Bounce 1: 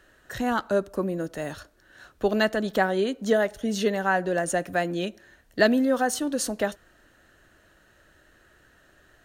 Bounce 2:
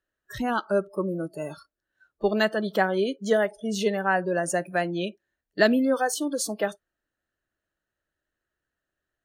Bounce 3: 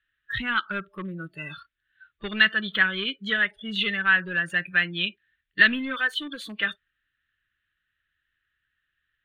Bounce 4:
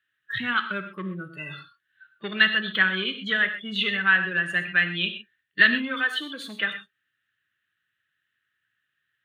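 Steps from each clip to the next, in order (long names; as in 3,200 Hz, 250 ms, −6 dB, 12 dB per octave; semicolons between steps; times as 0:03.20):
noise reduction from a noise print of the clip's start 27 dB
in parallel at −7 dB: hard clipping −23 dBFS, distortion −8 dB; on the sum: drawn EQ curve 110 Hz 0 dB, 740 Hz −22 dB, 1,200 Hz −1 dB, 1,800 Hz +9 dB, 3,600 Hz +9 dB, 5,400 Hz −26 dB, 15,000 Hz −18 dB
high-pass filter 110 Hz 24 dB per octave; reverb whose tail is shaped and stops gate 150 ms flat, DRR 7.5 dB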